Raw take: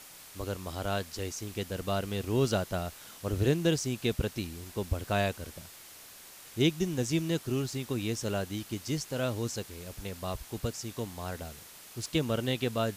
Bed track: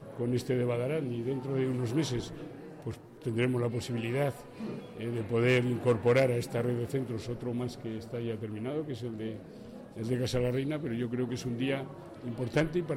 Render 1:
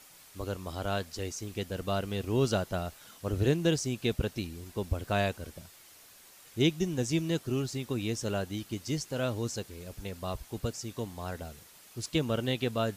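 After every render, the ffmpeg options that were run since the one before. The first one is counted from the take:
-af "afftdn=nr=6:nf=-51"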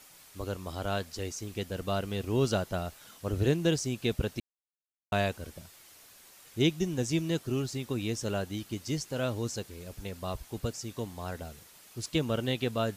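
-filter_complex "[0:a]asplit=3[s0][s1][s2];[s0]atrim=end=4.4,asetpts=PTS-STARTPTS,afade=t=out:st=4.396:d=0.004:c=hsin[s3];[s1]atrim=start=4.4:end=5.12,asetpts=PTS-STARTPTS,volume=0[s4];[s2]atrim=start=5.12,asetpts=PTS-STARTPTS,afade=t=in:d=0.004:c=hsin[s5];[s3][s4][s5]concat=n=3:v=0:a=1"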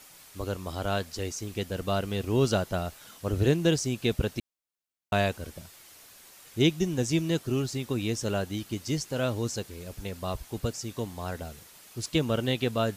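-af "volume=1.41"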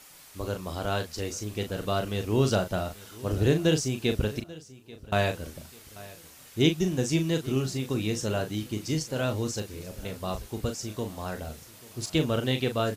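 -filter_complex "[0:a]asplit=2[s0][s1];[s1]adelay=38,volume=0.422[s2];[s0][s2]amix=inputs=2:normalize=0,aecho=1:1:838|1676|2514:0.1|0.04|0.016"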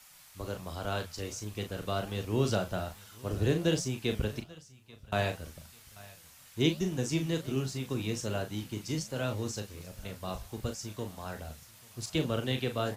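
-filter_complex "[0:a]flanger=delay=8.2:depth=9.4:regen=-82:speed=1.3:shape=sinusoidal,acrossover=split=230|560|7100[s0][s1][s2][s3];[s1]aeval=exprs='sgn(val(0))*max(abs(val(0))-0.00266,0)':c=same[s4];[s0][s4][s2][s3]amix=inputs=4:normalize=0"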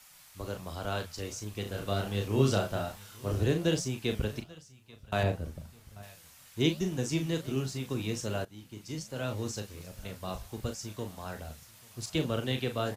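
-filter_complex "[0:a]asplit=3[s0][s1][s2];[s0]afade=t=out:st=1.65:d=0.02[s3];[s1]asplit=2[s4][s5];[s5]adelay=30,volume=0.708[s6];[s4][s6]amix=inputs=2:normalize=0,afade=t=in:st=1.65:d=0.02,afade=t=out:st=3.43:d=0.02[s7];[s2]afade=t=in:st=3.43:d=0.02[s8];[s3][s7][s8]amix=inputs=3:normalize=0,asettb=1/sr,asplit=3[s9][s10][s11];[s9]atrim=end=5.234[s12];[s10]atrim=start=5.23:end=6.03,asetpts=PTS-STARTPTS,afade=t=in:d=0.004:c=qsin,afade=t=out:st=0.796:d=0.004:c=qsin,tiltshelf=f=940:g=7[s13];[s11]atrim=start=6.026[s14];[s12][s13]acrossfade=d=0.004:c1=hsin:c2=qsin[s15];[s15][s14]acrossfade=d=0.004:c1=qsin:c2=hsin,asplit=2[s16][s17];[s16]atrim=end=8.45,asetpts=PTS-STARTPTS,afade=t=out:st=8.446:d=0.004:c=hsin:silence=0.158489[s18];[s17]atrim=start=8.45,asetpts=PTS-STARTPTS,afade=t=in:d=0.99:silence=0.158489[s19];[s18][s19]concat=n=2:v=0:a=1"

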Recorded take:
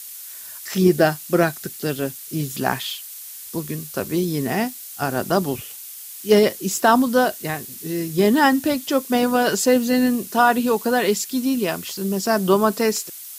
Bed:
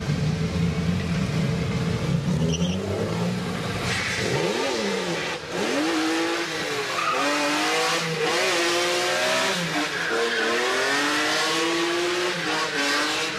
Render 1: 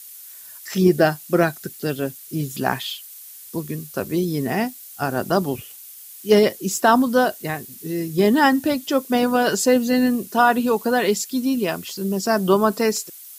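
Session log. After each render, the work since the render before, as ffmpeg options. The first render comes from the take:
-af "afftdn=nr=6:nf=-37"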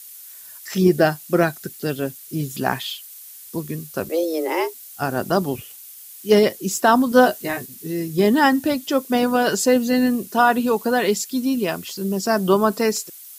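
-filter_complex "[0:a]asettb=1/sr,asplit=3[s0][s1][s2];[s0]atrim=end=4.094[s3];[s1]atrim=start=4.09:end=4.74,asetpts=PTS-STARTPTS,afade=t=in:d=0.004:c=qsin,afade=t=out:st=0.646:d=0.004:c=qsin,afreqshift=160[s4];[s2]atrim=start=4.736[s5];[s3][s4]acrossfade=d=0.004:c1=hsin:c2=qsin[s6];[s6][s5]acrossfade=d=0.004:c1=qsin:c2=hsin,asettb=1/sr,asplit=3[s7][s8][s9];[s7]atrim=end=7.104[s10];[s8]atrim=start=7.1:end=7.66,asetpts=PTS-STARTPTS,afade=t=in:d=0.004:c=qsin,afade=t=out:st=0.556:d=0.004:c=qsin,asplit=2[s11][s12];[s12]adelay=16,volume=0.794[s13];[s11][s13]amix=inputs=2:normalize=0,atrim=end_sample=24696[s14];[s9]atrim=start=7.656[s15];[s10][s14]acrossfade=d=0.004:c1=hsin:c2=qsin[s16];[s16][s15]acrossfade=d=0.004:c1=qsin:c2=hsin"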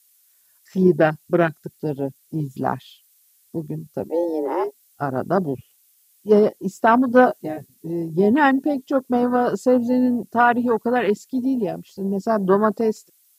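-af "afwtdn=0.0708,highshelf=f=12000:g=-3.5"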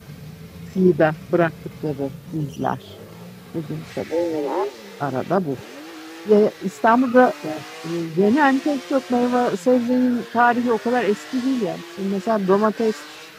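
-filter_complex "[1:a]volume=0.2[s0];[0:a][s0]amix=inputs=2:normalize=0"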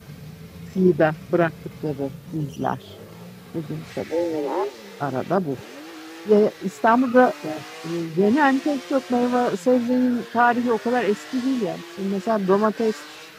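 -af "volume=0.841"

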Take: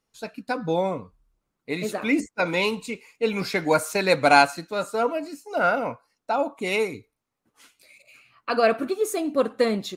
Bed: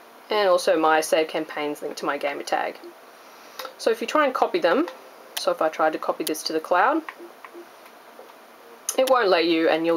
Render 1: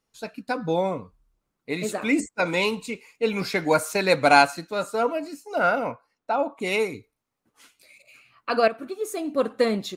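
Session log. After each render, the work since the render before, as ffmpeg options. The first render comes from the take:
-filter_complex "[0:a]asettb=1/sr,asplit=3[s0][s1][s2];[s0]atrim=end=1.834[s3];[s1]atrim=start=1.83:end=2.64,asetpts=PTS-STARTPTS,afade=t=in:d=0.004:c=qsin,afade=t=out:st=0.806:d=0.004:c=qsin,equalizer=f=7800:t=o:w=0.25:g=10.5[s4];[s2]atrim=start=2.636[s5];[s3][s4]acrossfade=d=0.004:c1=hsin:c2=qsin[s6];[s6][s5]acrossfade=d=0.004:c1=qsin:c2=hsin,asettb=1/sr,asplit=3[s7][s8][s9];[s7]atrim=end=5.914[s10];[s8]atrim=start=5.91:end=6.6,asetpts=PTS-STARTPTS,afade=t=in:d=0.004:c=qsin,afade=t=out:st=0.686:d=0.004:c=qsin,bass=f=250:g=-2,treble=f=4000:g=-9[s11];[s9]atrim=start=6.596[s12];[s10][s11]acrossfade=d=0.004:c1=hsin:c2=qsin[s13];[s13][s12]acrossfade=d=0.004:c1=qsin:c2=hsin,asplit=2[s14][s15];[s14]atrim=end=8.68,asetpts=PTS-STARTPTS,afade=t=out:st=8.676:d=0.004:c=hsin:silence=0.251189[s16];[s15]atrim=start=8.68,asetpts=PTS-STARTPTS,afade=t=in:d=0.88:silence=0.251189[s17];[s16][s17]concat=n=2:v=0:a=1"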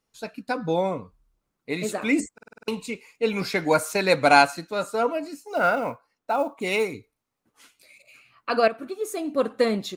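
-filter_complex "[0:a]asettb=1/sr,asplit=3[s0][s1][s2];[s0]atrim=end=5.454[s3];[s1]atrim=start=5.45:end=6.93,asetpts=PTS-STARTPTS,afade=t=in:d=0.004:c=qsin,afade=t=out:st=1.476:d=0.004:c=qsin,acrusher=bits=8:mode=log:mix=0:aa=0.000001[s4];[s2]atrim=start=6.926[s5];[s3][s4]acrossfade=d=0.004:c1=hsin:c2=qsin[s6];[s6][s5]acrossfade=d=0.004:c1=qsin:c2=hsin,asplit=8[s7][s8][s9][s10][s11][s12][s13][s14];[s7]atrim=end=2.382[s15];[s8]atrim=start=2.328:end=2.382[s16];[s9]atrim=start=2.328:end=2.382[s17];[s10]atrim=start=2.328:end=2.382[s18];[s11]atrim=start=2.328:end=2.382[s19];[s12]atrim=start=2.328:end=2.382[s20];[s13]atrim=start=2.328:end=2.382[s21];[s14]atrim=start=2.678[s22];[s15][s16]acrossfade=d=0.004:c1=hsin:c2=hsin[s23];[s23][s17]acrossfade=d=0.004:c1=hsin:c2=hsin[s24];[s24][s18]acrossfade=d=0.004:c1=hsin:c2=hsin[s25];[s25][s19]acrossfade=d=0.004:c1=hsin:c2=hsin[s26];[s26][s20]acrossfade=d=0.004:c1=hsin:c2=hsin[s27];[s27][s21]acrossfade=d=0.004:c1=hsin:c2=hsin[s28];[s28][s22]acrossfade=d=0.004:c1=hsin:c2=hsin"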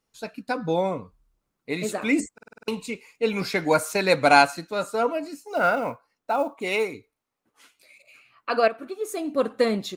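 -filter_complex "[0:a]asettb=1/sr,asplit=3[s0][s1][s2];[s0]atrim=end=6.564[s3];[s1]atrim=start=6.56:end=9.09,asetpts=PTS-STARTPTS,afade=t=in:d=0.004:c=qsin,afade=t=out:st=2.526:d=0.004:c=qsin,bass=f=250:g=-6,treble=f=4000:g=-3[s4];[s2]atrim=start=9.086[s5];[s3][s4]acrossfade=d=0.004:c1=hsin:c2=qsin[s6];[s6][s5]acrossfade=d=0.004:c1=qsin:c2=hsin"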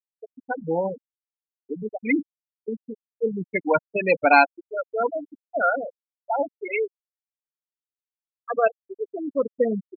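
-af "afftfilt=real='re*gte(hypot(re,im),0.251)':imag='im*gte(hypot(re,im),0.251)':win_size=1024:overlap=0.75,highshelf=f=4300:t=q:w=3:g=-11"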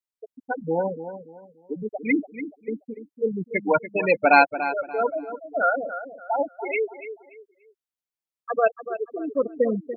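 -filter_complex "[0:a]asplit=2[s0][s1];[s1]adelay=289,lowpass=f=2600:p=1,volume=0.282,asplit=2[s2][s3];[s3]adelay=289,lowpass=f=2600:p=1,volume=0.31,asplit=2[s4][s5];[s5]adelay=289,lowpass=f=2600:p=1,volume=0.31[s6];[s0][s2][s4][s6]amix=inputs=4:normalize=0"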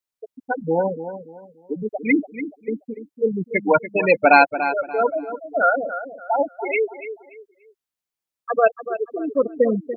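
-af "volume=1.58,alimiter=limit=0.794:level=0:latency=1"

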